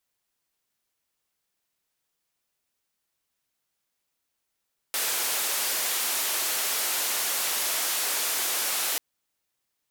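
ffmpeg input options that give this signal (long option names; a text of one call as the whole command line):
ffmpeg -f lavfi -i "anoisesrc=color=white:duration=4.04:sample_rate=44100:seed=1,highpass=frequency=420,lowpass=frequency=16000,volume=-21.1dB" out.wav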